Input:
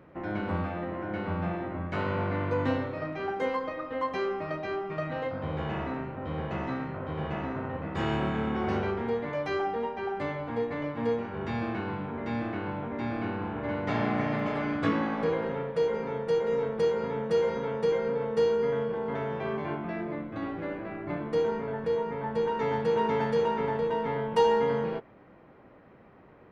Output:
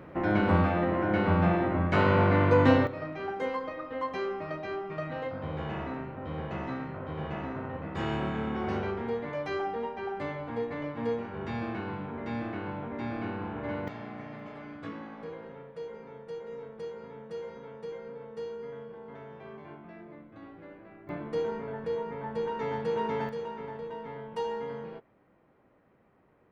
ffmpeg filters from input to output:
ffmpeg -i in.wav -af "asetnsamples=nb_out_samples=441:pad=0,asendcmd='2.87 volume volume -2.5dB;13.88 volume volume -13.5dB;21.09 volume volume -4dB;23.29 volume volume -10.5dB',volume=7dB" out.wav

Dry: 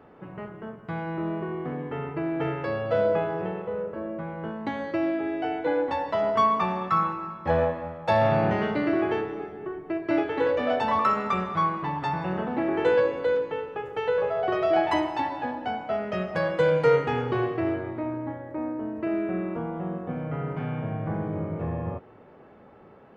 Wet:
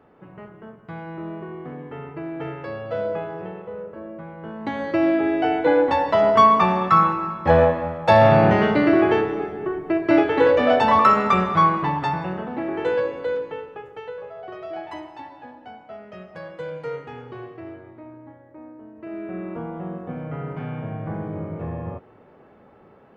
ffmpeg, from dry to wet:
ffmpeg -i in.wav -af "volume=19dB,afade=type=in:start_time=4.42:duration=0.73:silence=0.281838,afade=type=out:start_time=11.75:duration=0.63:silence=0.354813,afade=type=out:start_time=13.51:duration=0.66:silence=0.316228,afade=type=in:start_time=18.95:duration=0.65:silence=0.281838" out.wav

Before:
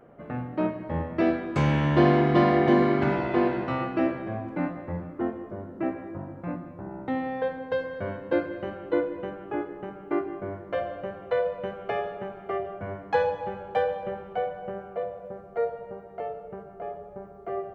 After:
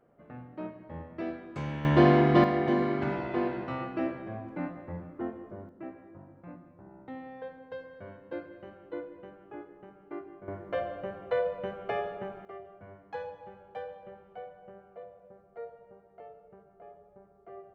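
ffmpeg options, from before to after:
ffmpeg -i in.wav -af "asetnsamples=nb_out_samples=441:pad=0,asendcmd='1.85 volume volume -0.5dB;2.44 volume volume -6.5dB;5.69 volume volume -13.5dB;10.48 volume volume -3dB;12.45 volume volume -15dB',volume=-12.5dB" out.wav

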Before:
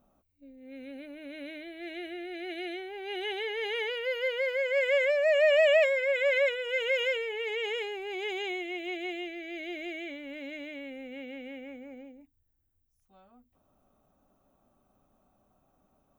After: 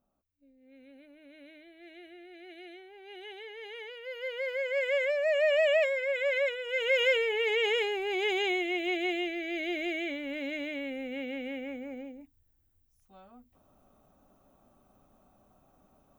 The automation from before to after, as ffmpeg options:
ffmpeg -i in.wav -af "volume=5dB,afade=type=in:start_time=4.01:duration=0.54:silence=0.398107,afade=type=in:start_time=6.67:duration=0.53:silence=0.398107" out.wav

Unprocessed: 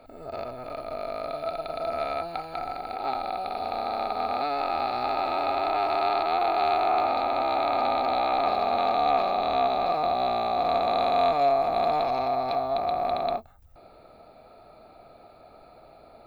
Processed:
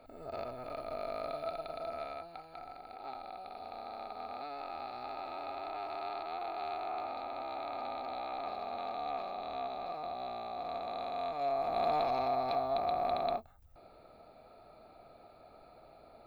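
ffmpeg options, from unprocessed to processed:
ffmpeg -i in.wav -af "volume=3dB,afade=type=out:start_time=1.25:duration=1.01:silence=0.354813,afade=type=in:start_time=11.31:duration=0.64:silence=0.354813" out.wav

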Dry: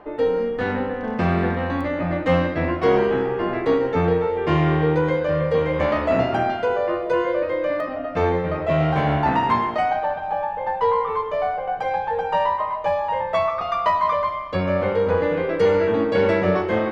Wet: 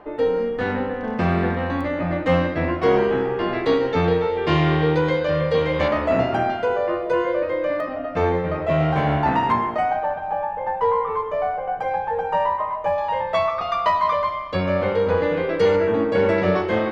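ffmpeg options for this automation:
ffmpeg -i in.wav -af "asetnsamples=nb_out_samples=441:pad=0,asendcmd='3.39 equalizer g 9.5;5.88 equalizer g -1;9.52 equalizer g -8;12.98 equalizer g 4;15.76 equalizer g -3.5;16.38 equalizer g 4',equalizer=frequency=4100:width_type=o:width=1.2:gain=0.5" out.wav

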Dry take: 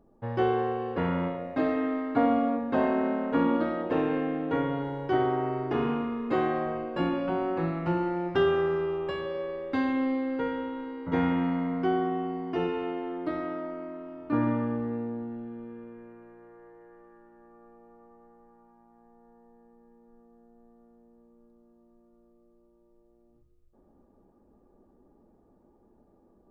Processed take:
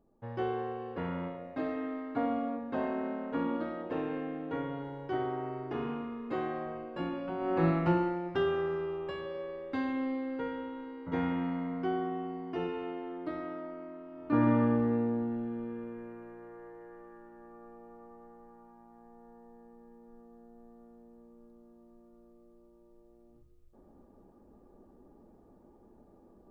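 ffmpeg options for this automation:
ffmpeg -i in.wav -af "volume=12.5dB,afade=type=in:start_time=7.38:duration=0.31:silence=0.266073,afade=type=out:start_time=7.69:duration=0.52:silence=0.334965,afade=type=in:start_time=14.1:duration=0.54:silence=0.354813" out.wav

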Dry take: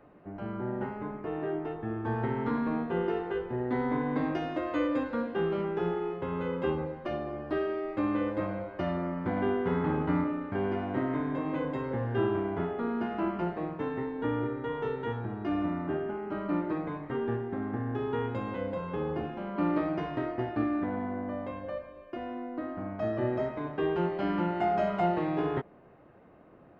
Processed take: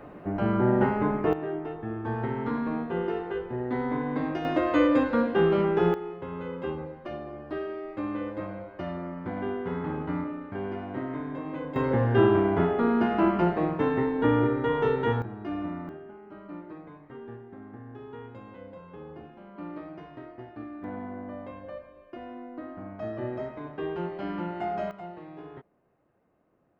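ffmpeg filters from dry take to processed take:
ffmpeg -i in.wav -af "asetnsamples=nb_out_samples=441:pad=0,asendcmd='1.33 volume volume 0.5dB;4.45 volume volume 7.5dB;5.94 volume volume -3dB;11.76 volume volume 8dB;15.22 volume volume -2.5dB;15.89 volume volume -11dB;20.84 volume volume -3.5dB;24.91 volume volume -14dB',volume=11.5dB" out.wav

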